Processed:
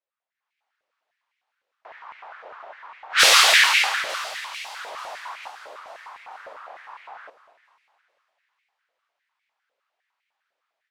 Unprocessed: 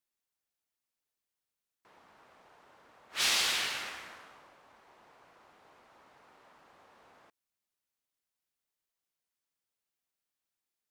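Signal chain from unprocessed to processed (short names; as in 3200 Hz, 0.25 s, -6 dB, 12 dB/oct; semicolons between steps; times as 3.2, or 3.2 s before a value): low-pass opened by the level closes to 2800 Hz, open at -32 dBFS; AGC gain up to 15 dB; 4.76–5.48 overdrive pedal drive 26 dB, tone 2300 Hz, clips at -34 dBFS; split-band echo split 1900 Hz, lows 0.231 s, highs 0.444 s, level -15.5 dB; stepped high-pass 9.9 Hz 540–2200 Hz; gain -1 dB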